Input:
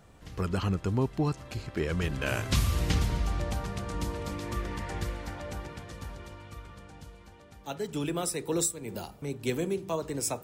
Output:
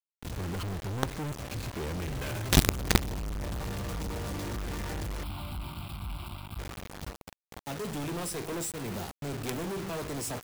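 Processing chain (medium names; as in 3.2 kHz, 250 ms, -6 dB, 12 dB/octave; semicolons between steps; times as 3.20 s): bass shelf 410 Hz +7 dB; companded quantiser 2-bit; 5.23–6.59 s: static phaser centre 1.8 kHz, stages 6; trim -8.5 dB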